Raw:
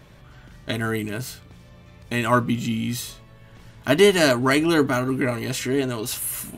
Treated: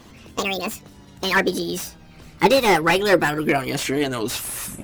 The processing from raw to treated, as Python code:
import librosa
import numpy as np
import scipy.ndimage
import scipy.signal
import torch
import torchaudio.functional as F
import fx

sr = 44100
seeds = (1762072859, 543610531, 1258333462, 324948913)

y = fx.speed_glide(x, sr, from_pct=184, to_pct=88)
y = fx.hpss(y, sr, part='percussive', gain_db=9)
y = fx.slew_limit(y, sr, full_power_hz=450.0)
y = y * 10.0 ** (-2.5 / 20.0)